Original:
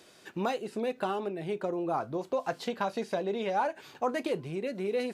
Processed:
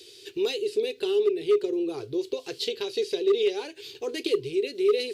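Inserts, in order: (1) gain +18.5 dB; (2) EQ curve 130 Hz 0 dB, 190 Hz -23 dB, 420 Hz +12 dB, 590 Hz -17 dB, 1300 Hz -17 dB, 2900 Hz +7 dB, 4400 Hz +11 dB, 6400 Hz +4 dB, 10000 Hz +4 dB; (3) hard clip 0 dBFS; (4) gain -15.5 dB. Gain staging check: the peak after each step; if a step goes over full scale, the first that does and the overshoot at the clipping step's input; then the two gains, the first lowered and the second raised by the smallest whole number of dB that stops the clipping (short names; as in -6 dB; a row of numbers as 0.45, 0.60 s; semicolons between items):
+2.0, +4.5, 0.0, -15.5 dBFS; step 1, 4.5 dB; step 1 +13.5 dB, step 4 -10.5 dB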